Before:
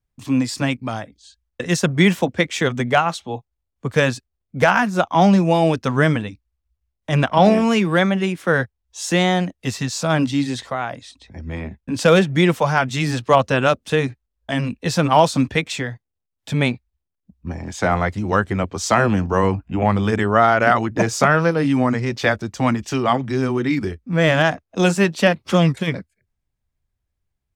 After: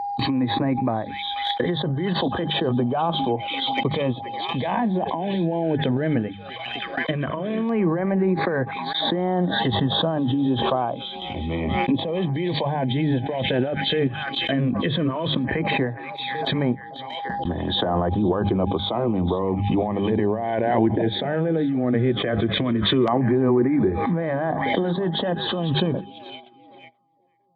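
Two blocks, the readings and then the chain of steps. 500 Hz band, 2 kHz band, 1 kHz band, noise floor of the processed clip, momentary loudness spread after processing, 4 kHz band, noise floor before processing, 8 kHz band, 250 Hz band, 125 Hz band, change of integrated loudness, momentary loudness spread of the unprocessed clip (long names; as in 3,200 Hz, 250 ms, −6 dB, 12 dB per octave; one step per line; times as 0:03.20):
−4.0 dB, −9.0 dB, −5.0 dB, −40 dBFS, 7 LU, +1.5 dB, −79 dBFS, below −40 dB, −2.5 dB, −3.5 dB, −4.5 dB, 15 LU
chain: hearing-aid frequency compression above 3,000 Hz 4 to 1
compressor whose output falls as the input rises −21 dBFS, ratio −1
high-shelf EQ 2,900 Hz +5 dB
steady tone 810 Hz −43 dBFS
mains-hum notches 50/100/150/200 Hz
notch comb filter 1,400 Hz
echo through a band-pass that steps 484 ms, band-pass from 3,300 Hz, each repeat −0.7 octaves, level −11 dB
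noise gate −37 dBFS, range −22 dB
treble cut that deepens with the level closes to 1,100 Hz, closed at −19 dBFS
parametric band 350 Hz +3.5 dB 0.31 octaves
auto-filter notch saw down 0.13 Hz 760–3,600 Hz
background raised ahead of every attack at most 24 dB per second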